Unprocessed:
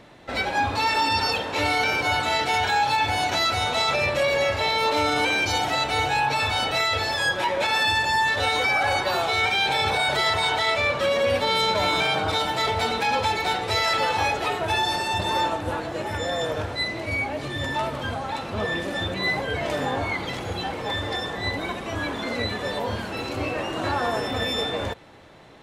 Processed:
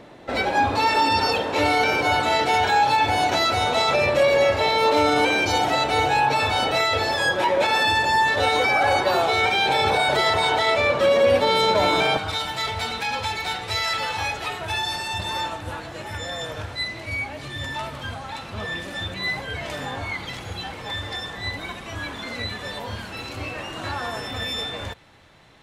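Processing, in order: peaking EQ 420 Hz +6 dB 2.5 oct, from 12.17 s -8 dB

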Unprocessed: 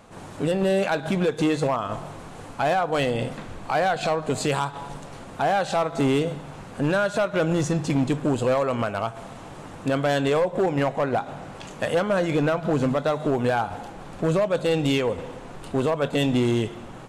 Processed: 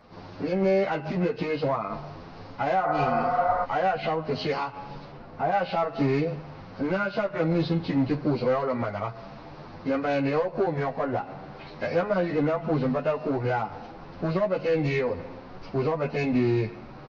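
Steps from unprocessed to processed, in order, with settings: knee-point frequency compression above 1.4 kHz 1.5:1; 2.86–3.62 s: spectral replace 460–2300 Hz before; 5.11–5.52 s: treble shelf 2.7 kHz -11 dB; endless flanger 9.6 ms +0.93 Hz

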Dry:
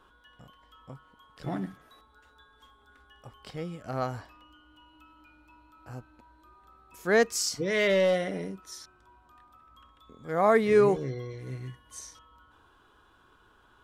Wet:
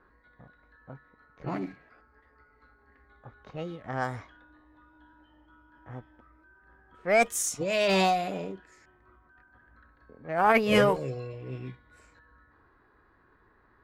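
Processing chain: formant shift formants +4 st; Chebyshev shaper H 2 -13 dB, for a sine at -6.5 dBFS; level-controlled noise filter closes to 1.4 kHz, open at -25 dBFS

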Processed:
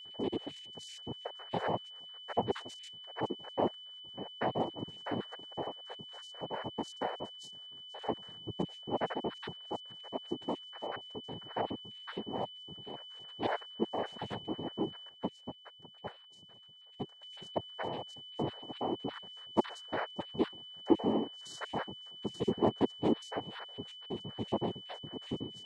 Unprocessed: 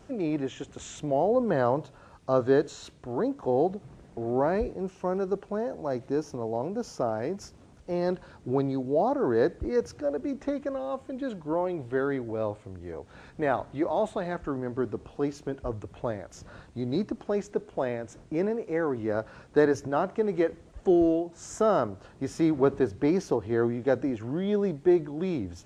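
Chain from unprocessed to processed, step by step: random holes in the spectrogram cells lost 66%; noise-vocoded speech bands 6; whistle 3 kHz -42 dBFS; 15.09–17.23 s: upward expansion 1.5:1, over -42 dBFS; trim -5 dB

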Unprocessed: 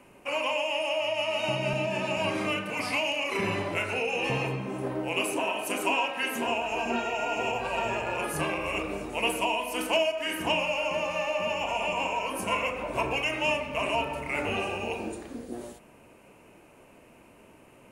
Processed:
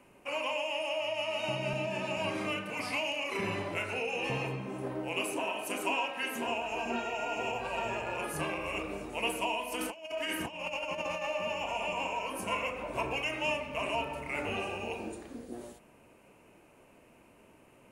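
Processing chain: 9.72–11.27 s: compressor with a negative ratio -31 dBFS, ratio -0.5; trim -5 dB

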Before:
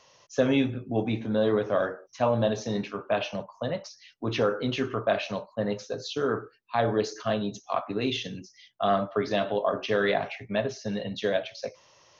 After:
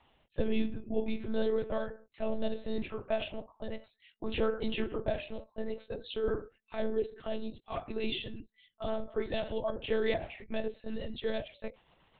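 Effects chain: rotary cabinet horn 0.6 Hz, later 8 Hz, at 9.44 s; monotone LPC vocoder at 8 kHz 220 Hz; dynamic bell 1.3 kHz, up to -7 dB, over -47 dBFS, Q 1.5; trim -3 dB

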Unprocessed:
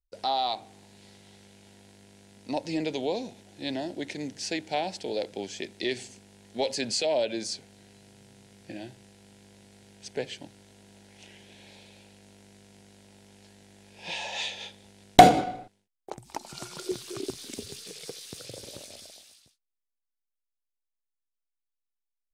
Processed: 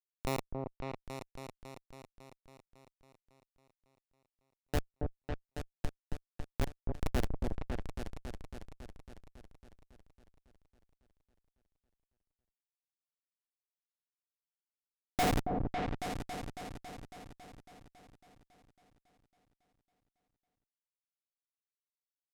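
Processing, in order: local Wiener filter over 9 samples; treble shelf 4.2 kHz -11 dB; Schmitt trigger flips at -20 dBFS; delay with an opening low-pass 276 ms, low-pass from 750 Hz, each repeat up 2 oct, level -3 dB; trim +5 dB

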